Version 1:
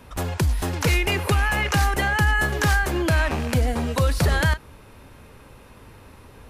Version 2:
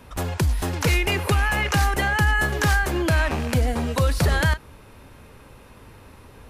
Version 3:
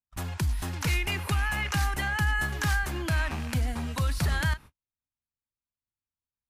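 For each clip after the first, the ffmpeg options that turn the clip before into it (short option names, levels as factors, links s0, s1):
-af anull
-af "agate=range=0.00398:threshold=0.0178:ratio=16:detection=peak,equalizer=f=480:w=1.4:g=-10.5,volume=0.501"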